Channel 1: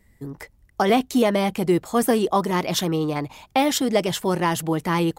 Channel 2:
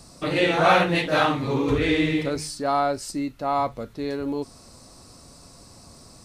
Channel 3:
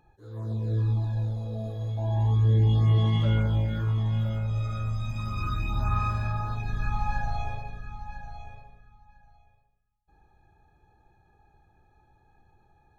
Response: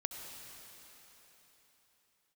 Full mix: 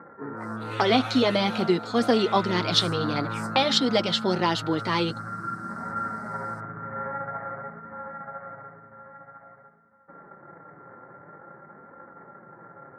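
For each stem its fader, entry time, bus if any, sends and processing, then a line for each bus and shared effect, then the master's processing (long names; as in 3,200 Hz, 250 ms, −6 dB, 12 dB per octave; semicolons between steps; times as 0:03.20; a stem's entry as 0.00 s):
+0.5 dB, 0.00 s, no send, envelope-controlled low-pass 440–4,200 Hz up, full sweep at −26 dBFS
−16.0 dB, 0.35 s, no send, noise gate with hold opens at −38 dBFS; spectral tilt +3 dB per octave; level that may rise only so fast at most 250 dB per second
+2.0 dB, 0.00 s, no send, samples sorted by size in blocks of 32 samples; Butterworth low-pass 2,000 Hz 96 dB per octave; envelope flattener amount 50%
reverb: not used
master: high-pass filter 170 Hz 24 dB per octave; flanger 0.5 Hz, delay 3.6 ms, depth 4.4 ms, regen −36%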